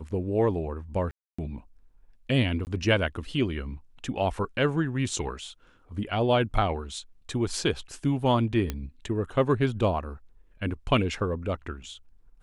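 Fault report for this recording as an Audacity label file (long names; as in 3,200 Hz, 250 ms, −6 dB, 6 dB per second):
1.110000	1.390000	drop-out 275 ms
2.650000	2.670000	drop-out 19 ms
8.700000	8.700000	click −15 dBFS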